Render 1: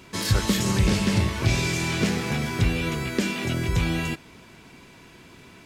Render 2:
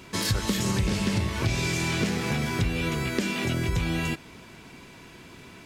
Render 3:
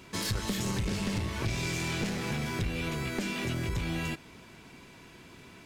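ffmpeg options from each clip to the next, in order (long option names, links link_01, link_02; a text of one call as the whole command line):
ffmpeg -i in.wav -af "acompressor=threshold=-25dB:ratio=3,volume=1.5dB" out.wav
ffmpeg -i in.wav -af "aeval=exprs='clip(val(0),-1,0.0531)':channel_layout=same,volume=-4.5dB" out.wav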